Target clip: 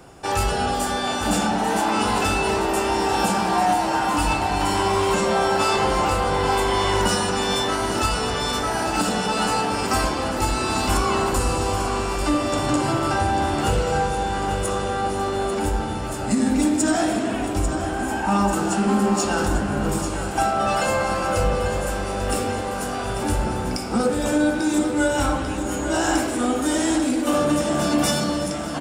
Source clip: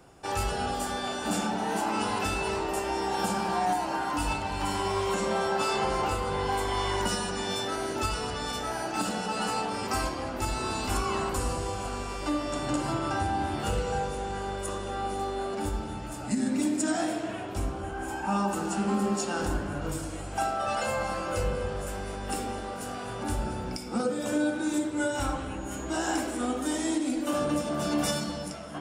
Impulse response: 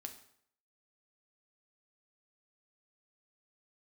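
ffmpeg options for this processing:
-filter_complex "[0:a]asplit=2[a][b];[b]asoftclip=type=tanh:threshold=-30.5dB,volume=-8dB[c];[a][c]amix=inputs=2:normalize=0,aecho=1:1:843|1686|2529|3372|4215|5058|5901:0.335|0.191|0.109|0.062|0.0354|0.0202|0.0115,volume=6dB"

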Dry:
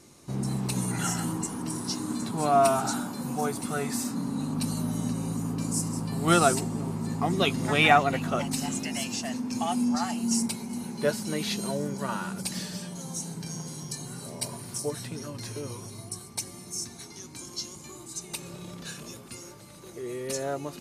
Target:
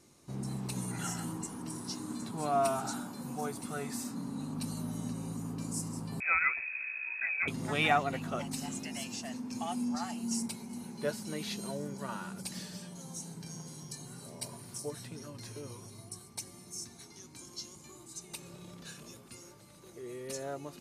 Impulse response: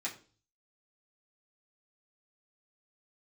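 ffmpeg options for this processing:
-filter_complex "[0:a]asettb=1/sr,asplit=3[a][b][c];[a]atrim=end=6.204[d];[b]atrim=start=6.2:end=7.48,asetpts=PTS-STARTPTS,afade=t=in:d=0.004:c=qsin,afade=t=out:st=1.276:d=0.004:c=qsin,lowpass=f=2.3k:t=q:w=0.5098,lowpass=f=2.3k:t=q:w=0.6013,lowpass=f=2.3k:t=q:w=0.9,lowpass=f=2.3k:t=q:w=2.563,afreqshift=-2700[e];[c]atrim=start=7.476[f];[d][e]acrossfade=d=0.004:c1=hsin:c2=qsin[g];[g][f]acrossfade=d=0.004:c1=qsin:c2=hsin,volume=-8dB"

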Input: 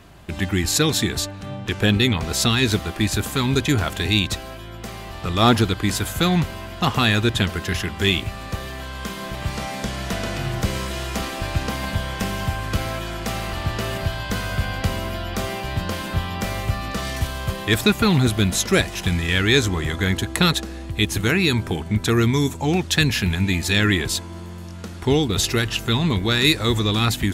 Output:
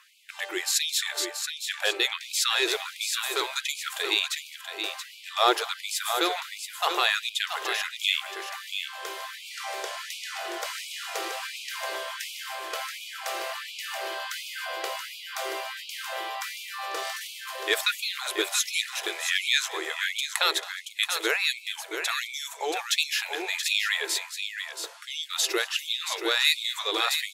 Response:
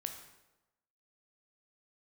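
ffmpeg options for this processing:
-af "aecho=1:1:211|678:0.1|0.422,afftfilt=real='re*gte(b*sr/1024,320*pow(2200/320,0.5+0.5*sin(2*PI*1.4*pts/sr)))':imag='im*gte(b*sr/1024,320*pow(2200/320,0.5+0.5*sin(2*PI*1.4*pts/sr)))':win_size=1024:overlap=0.75,volume=-3.5dB"

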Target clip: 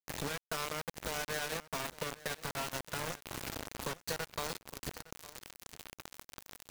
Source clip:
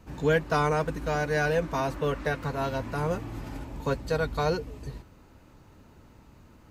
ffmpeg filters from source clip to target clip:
-filter_complex "[0:a]highpass=f=53:w=0.5412,highpass=f=53:w=1.3066,highshelf=f=6.2k:g=-10,bandreject=f=50:t=h:w=6,bandreject=f=100:t=h:w=6,bandreject=f=150:t=h:w=6,bandreject=f=200:t=h:w=6,bandreject=f=250:t=h:w=6,bandreject=f=300:t=h:w=6,bandreject=f=350:t=h:w=6,bandreject=f=400:t=h:w=6,bandreject=f=450:t=h:w=6,areverse,acompressor=mode=upward:threshold=-34dB:ratio=2.5,areverse,alimiter=limit=-23dB:level=0:latency=1:release=297,acompressor=threshold=-39dB:ratio=6,crystalizer=i=4.5:c=0,acrusher=bits=5:mix=0:aa=0.000001,asplit=2[a][b];[b]aecho=0:1:861:0.119[c];[a][c]amix=inputs=2:normalize=0,volume=1dB"

